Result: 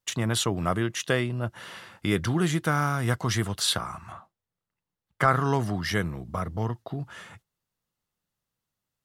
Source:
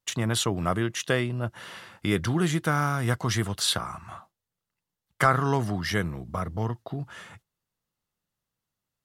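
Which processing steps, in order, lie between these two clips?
4.12–5.28 s: treble shelf 3.4 kHz -9.5 dB

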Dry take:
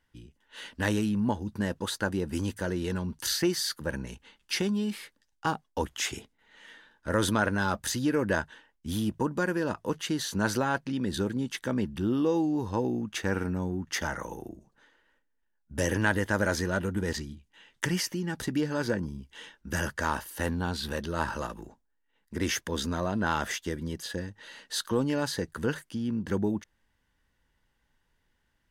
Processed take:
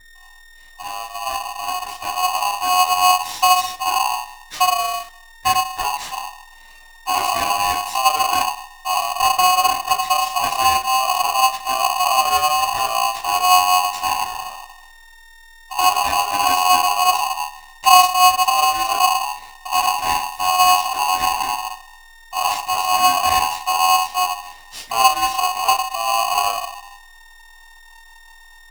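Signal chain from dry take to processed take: fade-in on the opening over 2.86 s; resonant low shelf 240 Hz +11.5 dB, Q 3; whistle 930 Hz -42 dBFS; reverberation RT60 0.35 s, pre-delay 6 ms, DRR -3 dB; polarity switched at an audio rate 910 Hz; trim -7.5 dB

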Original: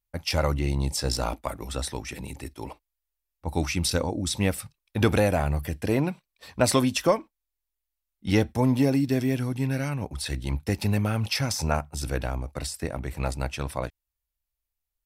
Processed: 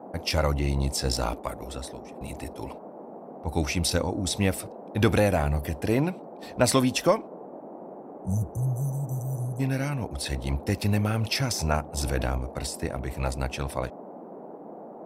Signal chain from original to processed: 1.35–2.21 s: fade out; 7.40–9.60 s: spectral selection erased 200–5900 Hz; band noise 180–780 Hz -42 dBFS; 11.97–12.38 s: level flattener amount 50%

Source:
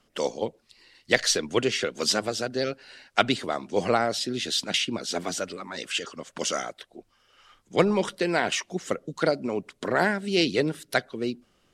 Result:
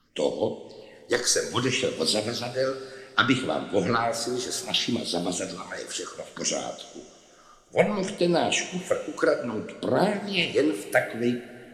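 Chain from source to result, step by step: phase shifter stages 6, 0.63 Hz, lowest notch 170–2000 Hz; two-slope reverb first 0.4 s, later 2.9 s, from -15 dB, DRR 5 dB; trim +2.5 dB

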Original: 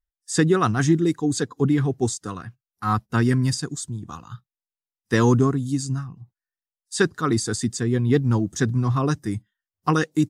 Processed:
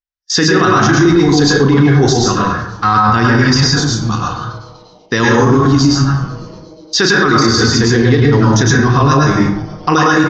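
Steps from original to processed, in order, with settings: steep low-pass 6.1 kHz 72 dB/octave; gate -45 dBFS, range -21 dB; tilt EQ +2 dB/octave; doubling 35 ms -10 dB; frequency-shifting echo 244 ms, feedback 65%, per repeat -150 Hz, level -24 dB; plate-style reverb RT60 0.74 s, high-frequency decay 0.45×, pre-delay 90 ms, DRR -3.5 dB; loudness maximiser +16 dB; trim -1 dB

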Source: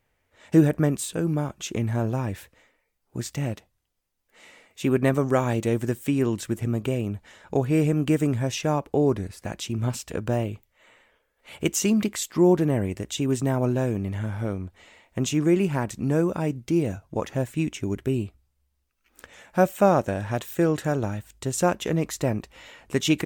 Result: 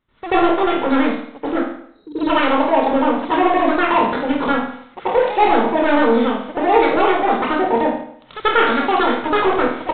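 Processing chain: spectral selection erased 3.57–5.11 s, 210–1600 Hz; saturation -22.5 dBFS, distortion -8 dB; reverberation RT60 1.5 s, pre-delay 198 ms, DRR -16 dB; speed mistake 33 rpm record played at 78 rpm; resampled via 8 kHz; trim -3 dB

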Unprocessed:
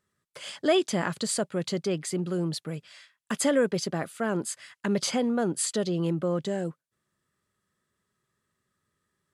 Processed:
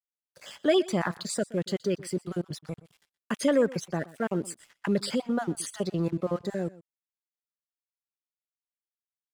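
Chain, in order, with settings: random holes in the spectrogram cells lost 32%; treble shelf 2.5 kHz -4 dB; crossover distortion -52.5 dBFS; delay 123 ms -20 dB; trim +1 dB

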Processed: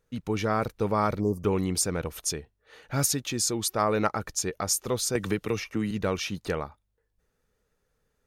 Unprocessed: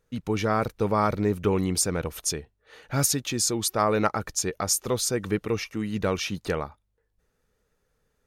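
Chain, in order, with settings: 1.20–1.44 s: spectral selection erased 1.2–4.6 kHz; 5.15–5.91 s: three bands compressed up and down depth 100%; trim -2 dB

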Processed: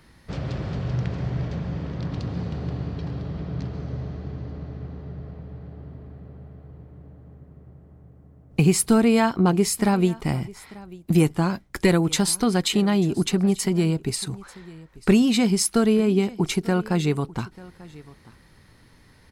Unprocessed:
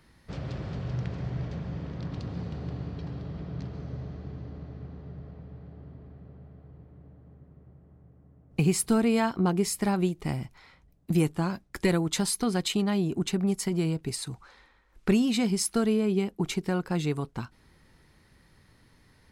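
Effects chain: delay 891 ms -21 dB; trim +6 dB

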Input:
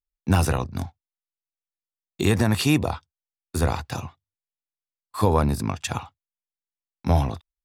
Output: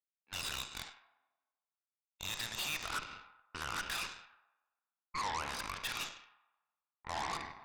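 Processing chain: in parallel at -10 dB: hard clipper -16.5 dBFS, distortion -12 dB; on the sum: LFO high-pass sine 0.52 Hz 920–3100 Hz; reverse; compression 4:1, threshold -37 dBFS, peak gain reduction 20.5 dB; reverse; rippled Chebyshev low-pass 5.1 kHz, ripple 6 dB; Schroeder reverb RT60 1.4 s, combs from 33 ms, DRR 10.5 dB; peak limiter -32.5 dBFS, peak gain reduction 9.5 dB; level-controlled noise filter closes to 670 Hz, open at -43 dBFS; Chebyshev shaper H 8 -11 dB, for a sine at -32 dBFS; bass shelf 400 Hz -3.5 dB; trim +4 dB

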